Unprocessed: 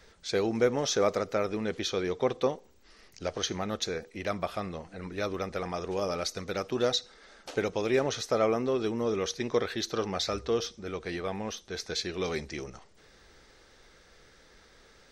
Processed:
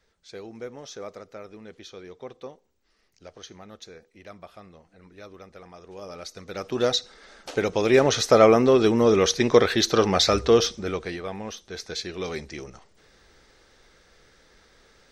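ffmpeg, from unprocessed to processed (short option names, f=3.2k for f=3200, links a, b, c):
-af "volume=11dB,afade=t=in:st=5.83:d=0.65:silence=0.398107,afade=t=in:st=6.48:d=0.36:silence=0.375837,afade=t=in:st=7.58:d=0.71:silence=0.473151,afade=t=out:st=10.71:d=0.46:silence=0.298538"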